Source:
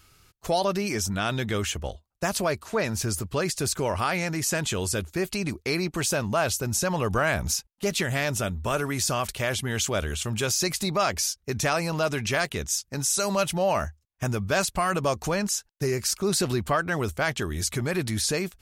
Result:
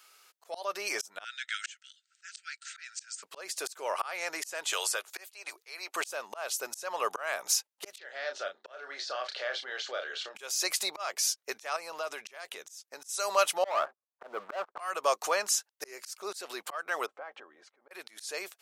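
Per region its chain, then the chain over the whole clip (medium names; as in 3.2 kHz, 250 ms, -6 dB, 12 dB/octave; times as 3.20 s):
1.24–3.23 s: upward compressor, threshold -33 dBFS + brick-wall FIR band-pass 1.3–8.8 kHz
4.73–5.96 s: high-pass 610 Hz + three bands compressed up and down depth 100%
7.98–10.35 s: compression 10:1, threshold -29 dBFS + cabinet simulation 300–4600 Hz, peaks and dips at 550 Hz +4 dB, 1 kHz -9 dB, 1.6 kHz +5 dB, 2.5 kHz -6 dB, 4.3 kHz +6 dB + doubling 32 ms -6.5 dB
11.76–13.09 s: bass shelf 150 Hz +10.5 dB + compression, threshold -29 dBFS
13.64–14.80 s: steep low-pass 1.4 kHz 48 dB/octave + peaking EQ 110 Hz -9.5 dB 0.69 oct + waveshaping leveller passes 3
17.06–17.91 s: low-pass 1.2 kHz + compression 16:1, threshold -36 dBFS + comb 3.8 ms, depth 35%
whole clip: high-pass 510 Hz 24 dB/octave; slow attack 345 ms; dynamic bell 1.2 kHz, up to +5 dB, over -49 dBFS, Q 5.5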